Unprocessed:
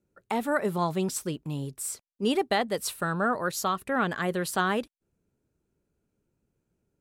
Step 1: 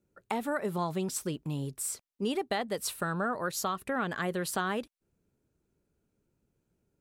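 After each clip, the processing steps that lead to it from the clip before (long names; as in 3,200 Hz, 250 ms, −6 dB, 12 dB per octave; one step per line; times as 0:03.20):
downward compressor 2.5 to 1, threshold −30 dBFS, peak gain reduction 7 dB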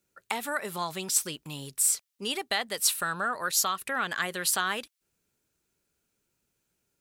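tilt shelving filter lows −9.5 dB
level +1.5 dB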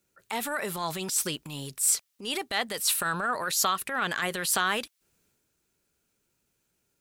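transient designer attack −9 dB, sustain +4 dB
level +2.5 dB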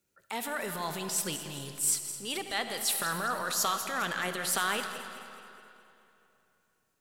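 feedback delay that plays each chunk backwards 106 ms, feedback 69%, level −12 dB
convolution reverb RT60 3.0 s, pre-delay 20 ms, DRR 9 dB
level −4 dB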